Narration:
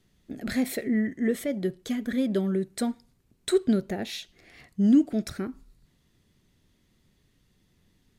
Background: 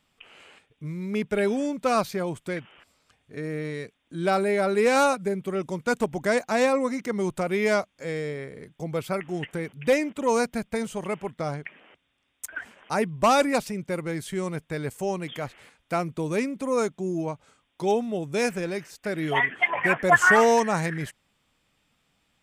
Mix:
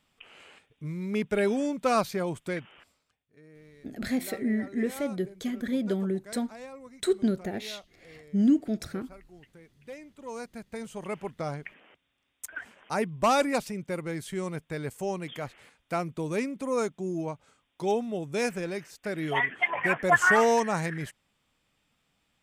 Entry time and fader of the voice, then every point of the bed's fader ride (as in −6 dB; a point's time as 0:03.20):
3.55 s, −2.5 dB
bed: 0:02.86 −1.5 dB
0:03.28 −22 dB
0:09.92 −22 dB
0:11.20 −3.5 dB